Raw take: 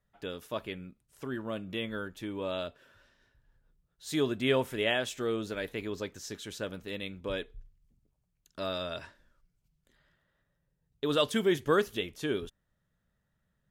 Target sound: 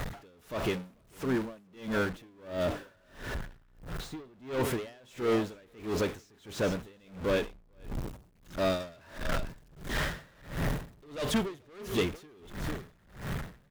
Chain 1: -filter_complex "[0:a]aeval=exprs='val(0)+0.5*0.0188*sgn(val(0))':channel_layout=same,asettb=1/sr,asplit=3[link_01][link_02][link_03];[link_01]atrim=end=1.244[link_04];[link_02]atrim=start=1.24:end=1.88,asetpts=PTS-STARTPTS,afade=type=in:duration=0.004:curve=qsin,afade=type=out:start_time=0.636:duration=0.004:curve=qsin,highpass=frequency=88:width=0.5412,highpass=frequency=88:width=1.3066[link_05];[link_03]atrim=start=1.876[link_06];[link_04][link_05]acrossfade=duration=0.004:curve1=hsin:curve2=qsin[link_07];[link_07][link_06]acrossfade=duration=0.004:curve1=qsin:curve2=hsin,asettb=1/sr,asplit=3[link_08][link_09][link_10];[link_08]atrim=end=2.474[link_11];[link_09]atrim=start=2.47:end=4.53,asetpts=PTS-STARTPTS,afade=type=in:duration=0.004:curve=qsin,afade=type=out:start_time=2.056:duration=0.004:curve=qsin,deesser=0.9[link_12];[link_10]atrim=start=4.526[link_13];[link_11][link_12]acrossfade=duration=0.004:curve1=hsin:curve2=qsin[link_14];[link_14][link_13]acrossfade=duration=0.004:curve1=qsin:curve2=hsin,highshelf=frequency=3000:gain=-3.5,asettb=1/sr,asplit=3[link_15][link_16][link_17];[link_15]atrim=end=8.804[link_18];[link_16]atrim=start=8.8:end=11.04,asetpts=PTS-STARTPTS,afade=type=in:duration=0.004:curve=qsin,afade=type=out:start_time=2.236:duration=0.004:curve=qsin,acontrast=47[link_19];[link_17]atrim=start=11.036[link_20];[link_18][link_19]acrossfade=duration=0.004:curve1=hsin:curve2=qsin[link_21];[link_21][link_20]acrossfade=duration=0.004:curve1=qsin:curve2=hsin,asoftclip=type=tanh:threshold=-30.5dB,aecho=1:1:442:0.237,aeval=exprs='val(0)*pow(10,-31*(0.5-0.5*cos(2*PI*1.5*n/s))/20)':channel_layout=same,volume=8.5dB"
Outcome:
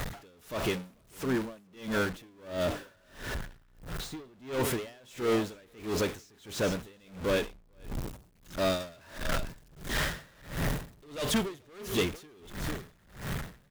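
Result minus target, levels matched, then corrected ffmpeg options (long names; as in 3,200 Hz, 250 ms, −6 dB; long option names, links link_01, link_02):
8,000 Hz band +4.5 dB
-filter_complex "[0:a]aeval=exprs='val(0)+0.5*0.0188*sgn(val(0))':channel_layout=same,asettb=1/sr,asplit=3[link_01][link_02][link_03];[link_01]atrim=end=1.244[link_04];[link_02]atrim=start=1.24:end=1.88,asetpts=PTS-STARTPTS,afade=type=in:duration=0.004:curve=qsin,afade=type=out:start_time=0.636:duration=0.004:curve=qsin,highpass=frequency=88:width=0.5412,highpass=frequency=88:width=1.3066[link_05];[link_03]atrim=start=1.876[link_06];[link_04][link_05]acrossfade=duration=0.004:curve1=hsin:curve2=qsin[link_07];[link_07][link_06]acrossfade=duration=0.004:curve1=qsin:curve2=hsin,asettb=1/sr,asplit=3[link_08][link_09][link_10];[link_08]atrim=end=2.474[link_11];[link_09]atrim=start=2.47:end=4.53,asetpts=PTS-STARTPTS,afade=type=in:duration=0.004:curve=qsin,afade=type=out:start_time=2.056:duration=0.004:curve=qsin,deesser=0.9[link_12];[link_10]atrim=start=4.526[link_13];[link_11][link_12]acrossfade=duration=0.004:curve1=hsin:curve2=qsin[link_14];[link_14][link_13]acrossfade=duration=0.004:curve1=qsin:curve2=hsin,highshelf=frequency=3000:gain=-9.5,asettb=1/sr,asplit=3[link_15][link_16][link_17];[link_15]atrim=end=8.804[link_18];[link_16]atrim=start=8.8:end=11.04,asetpts=PTS-STARTPTS,afade=type=in:duration=0.004:curve=qsin,afade=type=out:start_time=2.236:duration=0.004:curve=qsin,acontrast=47[link_19];[link_17]atrim=start=11.036[link_20];[link_18][link_19]acrossfade=duration=0.004:curve1=hsin:curve2=qsin[link_21];[link_21][link_20]acrossfade=duration=0.004:curve1=qsin:curve2=hsin,asoftclip=type=tanh:threshold=-30.5dB,aecho=1:1:442:0.237,aeval=exprs='val(0)*pow(10,-31*(0.5-0.5*cos(2*PI*1.5*n/s))/20)':channel_layout=same,volume=8.5dB"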